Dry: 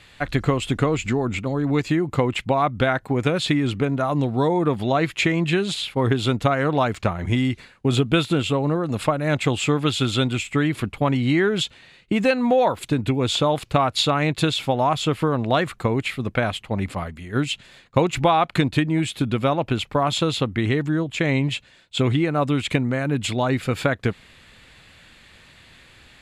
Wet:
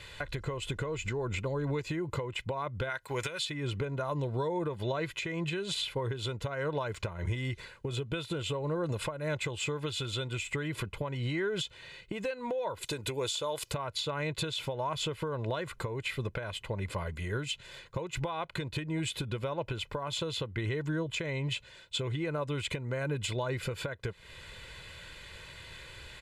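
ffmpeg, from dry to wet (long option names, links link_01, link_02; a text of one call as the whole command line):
ffmpeg -i in.wav -filter_complex "[0:a]asplit=3[link_01][link_02][link_03];[link_01]afade=type=out:start_time=2.89:duration=0.02[link_04];[link_02]tiltshelf=frequency=970:gain=-9.5,afade=type=in:start_time=2.89:duration=0.02,afade=type=out:start_time=3.49:duration=0.02[link_05];[link_03]afade=type=in:start_time=3.49:duration=0.02[link_06];[link_04][link_05][link_06]amix=inputs=3:normalize=0,asettb=1/sr,asplit=3[link_07][link_08][link_09];[link_07]atrim=end=12.854[link_10];[link_08]atrim=start=12.85:end=13.74,asetpts=PTS-STARTPTS,afade=type=in:duration=0.004:curve=qsin,afade=type=out:start_time=0.886:duration=0.004:curve=qsin,bass=frequency=250:gain=-9,treble=frequency=4000:gain=11[link_11];[link_09]atrim=start=13.736[link_12];[link_10][link_11]acrossfade=duration=0.004:curve1=hsin:curve2=qsin[link_13];[link_13][link_12]acrossfade=duration=0.004:curve1=qsin:curve2=hsin,aecho=1:1:2:0.68,acompressor=threshold=-27dB:ratio=8,alimiter=limit=-23.5dB:level=0:latency=1:release=387" out.wav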